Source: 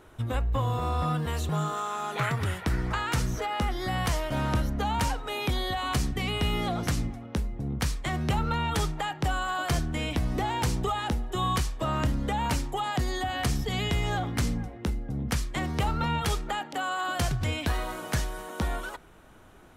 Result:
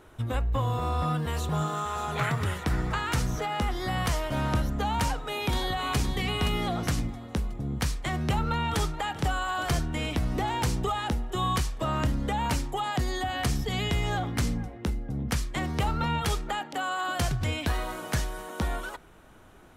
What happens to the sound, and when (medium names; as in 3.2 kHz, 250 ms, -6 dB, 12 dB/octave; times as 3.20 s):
0.77–1.95 s: echo throw 590 ms, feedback 80%, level -11 dB
4.95–5.97 s: echo throw 520 ms, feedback 35%, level -8 dB
8.17–8.97 s: echo throw 430 ms, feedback 70%, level -15 dB